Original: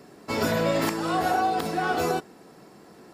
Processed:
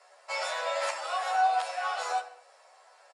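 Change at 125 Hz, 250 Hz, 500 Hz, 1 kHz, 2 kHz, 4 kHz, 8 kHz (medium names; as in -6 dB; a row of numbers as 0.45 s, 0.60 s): under -40 dB, under -40 dB, -9.0 dB, -2.0 dB, -3.0 dB, -2.5 dB, -3.5 dB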